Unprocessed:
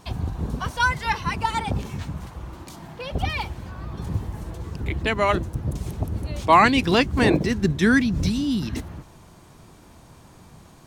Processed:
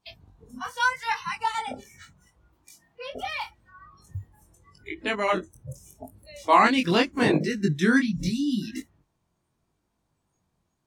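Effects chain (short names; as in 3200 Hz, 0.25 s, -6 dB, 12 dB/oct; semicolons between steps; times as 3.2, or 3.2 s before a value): spectral noise reduction 24 dB; chorus 0.8 Hz, delay 19 ms, depth 4.3 ms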